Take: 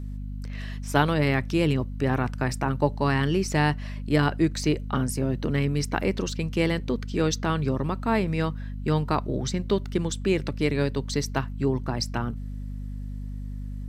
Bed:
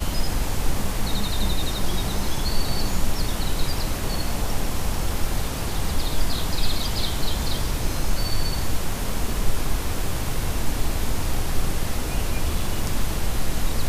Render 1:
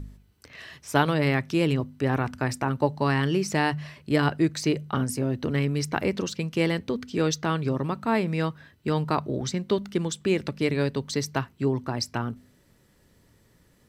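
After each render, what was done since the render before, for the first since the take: de-hum 50 Hz, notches 5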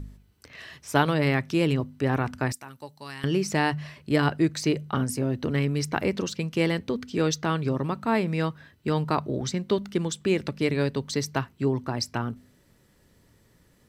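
2.52–3.24 pre-emphasis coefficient 0.9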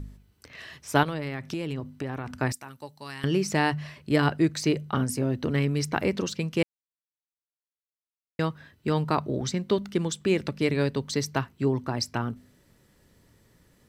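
1.03–2.4 compressor 10:1, threshold -27 dBFS; 6.63–8.39 mute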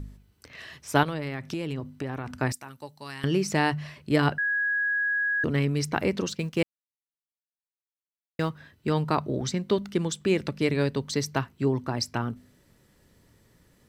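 4.38–5.44 bleep 1660 Hz -23 dBFS; 6.35–8.5 G.711 law mismatch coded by A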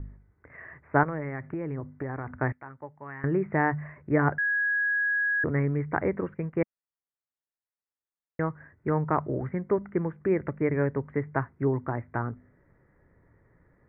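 steep low-pass 2100 Hz 72 dB/oct; bell 220 Hz -6 dB 0.48 oct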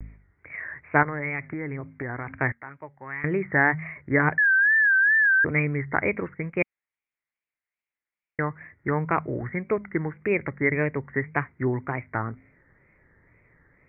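synth low-pass 2200 Hz, resonance Q 6.9; wow and flutter 120 cents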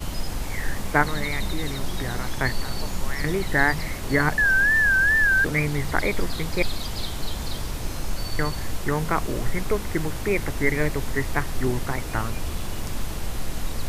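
add bed -5 dB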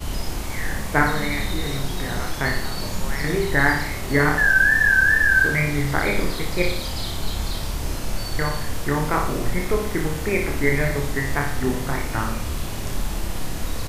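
doubler 28 ms -4 dB; flutter echo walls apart 10 m, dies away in 0.59 s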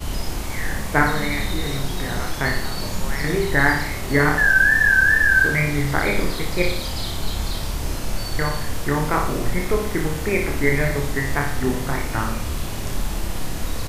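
gain +1 dB

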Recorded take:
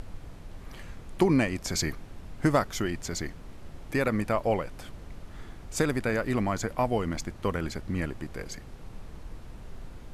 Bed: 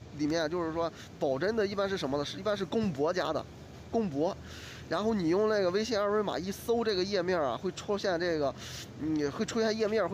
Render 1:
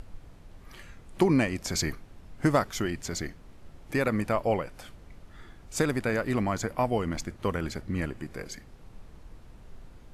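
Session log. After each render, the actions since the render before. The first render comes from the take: noise print and reduce 6 dB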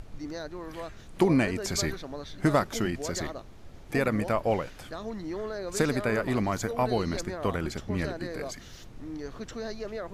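add bed -7.5 dB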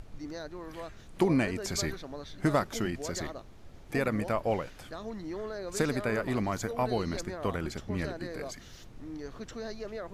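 gain -3 dB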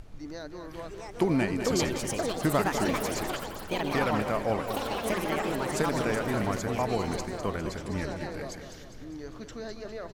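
feedback echo 0.202 s, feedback 57%, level -9 dB; echoes that change speed 0.755 s, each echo +5 st, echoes 3

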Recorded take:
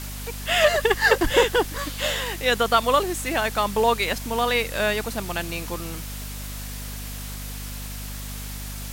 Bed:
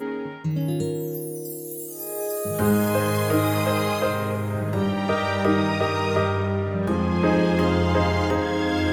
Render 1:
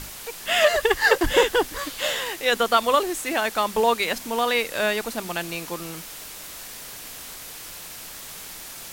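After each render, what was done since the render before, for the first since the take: notches 50/100/150/200/250 Hz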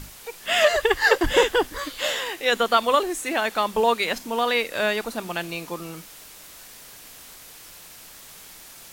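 noise print and reduce 6 dB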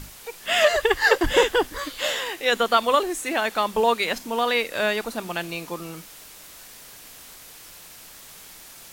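nothing audible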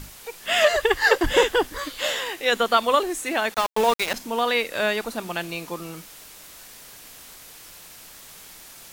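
3.54–4.14 sample gate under -24 dBFS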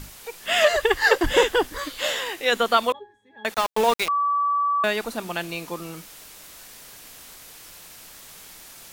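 2.92–3.45 octave resonator G#, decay 0.4 s; 4.08–4.84 bleep 1150 Hz -19 dBFS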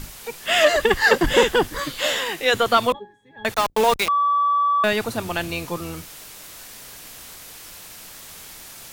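octaver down 1 oct, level -5 dB; in parallel at -5 dB: soft clip -20 dBFS, distortion -9 dB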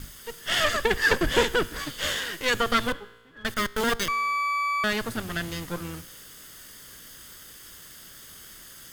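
minimum comb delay 0.61 ms; resonator 58 Hz, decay 1.3 s, harmonics all, mix 40%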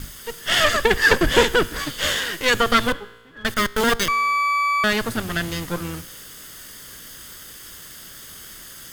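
gain +6 dB

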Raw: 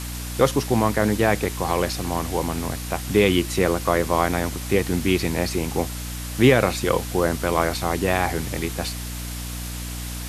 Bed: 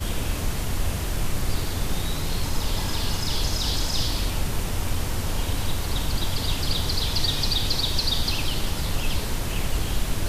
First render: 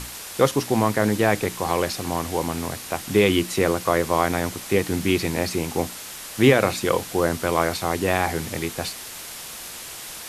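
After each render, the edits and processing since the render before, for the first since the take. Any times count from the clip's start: notches 60/120/180/240/300 Hz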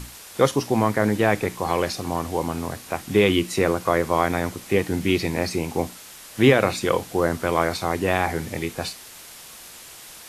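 noise print and reduce 6 dB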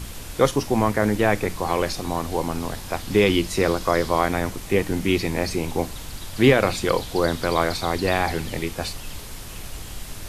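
add bed -11 dB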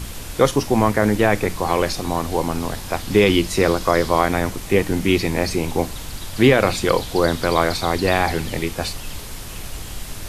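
gain +3.5 dB; limiter -2 dBFS, peak gain reduction 3 dB

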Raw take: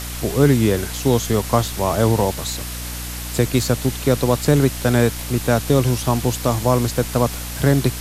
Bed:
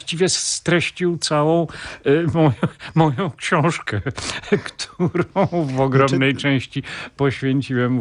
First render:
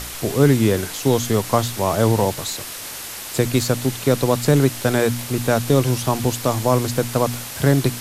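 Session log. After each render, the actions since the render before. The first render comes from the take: de-hum 60 Hz, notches 5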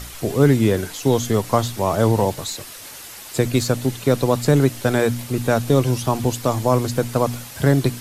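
denoiser 7 dB, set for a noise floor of -33 dBFS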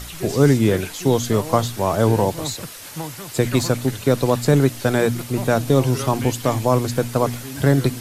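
add bed -15.5 dB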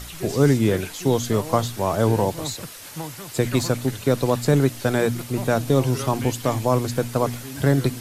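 gain -2.5 dB

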